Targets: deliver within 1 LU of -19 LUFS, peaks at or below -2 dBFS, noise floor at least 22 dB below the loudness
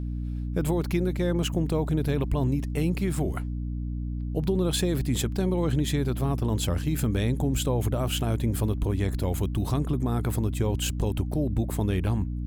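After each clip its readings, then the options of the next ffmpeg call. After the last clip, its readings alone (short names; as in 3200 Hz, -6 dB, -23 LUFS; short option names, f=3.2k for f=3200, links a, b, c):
hum 60 Hz; harmonics up to 300 Hz; hum level -28 dBFS; loudness -27.5 LUFS; peak -13.0 dBFS; loudness target -19.0 LUFS
-> -af "bandreject=f=60:t=h:w=4,bandreject=f=120:t=h:w=4,bandreject=f=180:t=h:w=4,bandreject=f=240:t=h:w=4,bandreject=f=300:t=h:w=4"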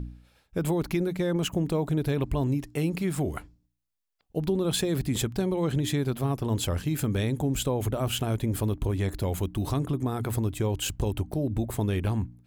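hum none; loudness -28.5 LUFS; peak -14.5 dBFS; loudness target -19.0 LUFS
-> -af "volume=9.5dB"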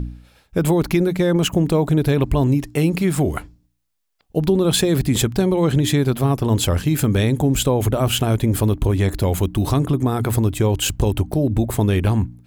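loudness -19.0 LUFS; peak -5.0 dBFS; noise floor -65 dBFS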